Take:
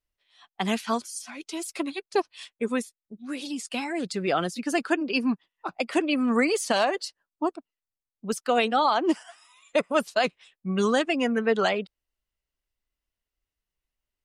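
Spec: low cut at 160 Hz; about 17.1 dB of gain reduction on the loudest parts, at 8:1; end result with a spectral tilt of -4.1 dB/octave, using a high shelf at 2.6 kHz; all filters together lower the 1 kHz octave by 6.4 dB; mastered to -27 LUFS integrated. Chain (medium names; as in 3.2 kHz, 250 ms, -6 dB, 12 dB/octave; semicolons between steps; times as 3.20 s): high-pass 160 Hz; peaking EQ 1 kHz -8.5 dB; treble shelf 2.6 kHz -6 dB; compression 8:1, threshold -39 dBFS; trim +16.5 dB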